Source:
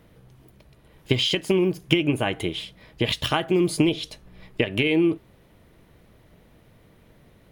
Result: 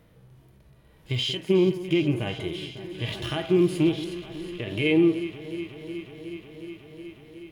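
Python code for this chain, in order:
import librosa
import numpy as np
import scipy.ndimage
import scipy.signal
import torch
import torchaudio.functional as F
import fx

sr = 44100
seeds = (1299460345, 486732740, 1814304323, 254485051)

y = fx.echo_alternate(x, sr, ms=183, hz=1800.0, feedback_pct=89, wet_db=-14.0)
y = fx.hpss(y, sr, part='percussive', gain_db=-17)
y = F.gain(torch.from_numpy(y), 1.0).numpy()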